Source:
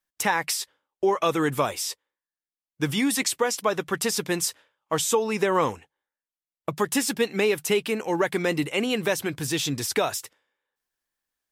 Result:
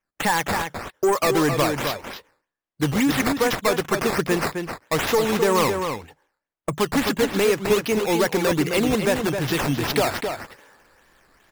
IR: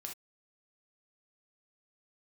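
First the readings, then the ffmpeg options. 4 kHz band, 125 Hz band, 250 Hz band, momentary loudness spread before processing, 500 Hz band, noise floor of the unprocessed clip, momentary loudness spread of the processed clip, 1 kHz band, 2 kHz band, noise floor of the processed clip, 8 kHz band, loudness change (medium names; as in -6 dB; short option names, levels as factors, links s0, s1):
+2.0 dB, +6.5 dB, +5.0 dB, 7 LU, +4.0 dB, under -85 dBFS, 11 LU, +4.0 dB, +3.5 dB, under -85 dBFS, -2.5 dB, +3.5 dB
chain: -filter_complex "[0:a]areverse,acompressor=mode=upward:threshold=0.0141:ratio=2.5,areverse,asoftclip=type=tanh:threshold=0.106,adynamicsmooth=sensitivity=6.5:basefreq=3600,acrusher=samples=10:mix=1:aa=0.000001:lfo=1:lforange=10:lforate=2.5,asplit=2[s0][s1];[s1]adelay=262.4,volume=0.501,highshelf=f=4000:g=-5.9[s2];[s0][s2]amix=inputs=2:normalize=0,volume=2"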